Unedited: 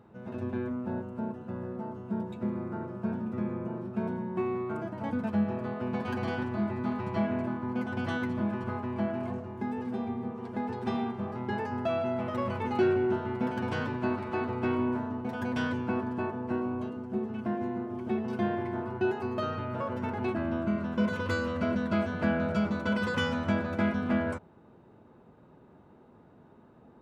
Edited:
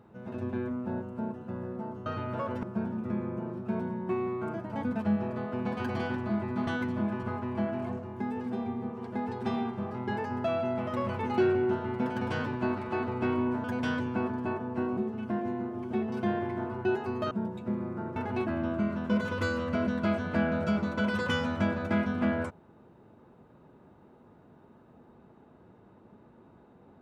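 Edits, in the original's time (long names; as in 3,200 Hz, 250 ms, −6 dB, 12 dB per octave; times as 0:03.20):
0:02.06–0:02.91: swap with 0:19.47–0:20.04
0:06.95–0:08.08: remove
0:15.05–0:15.37: remove
0:16.70–0:17.13: remove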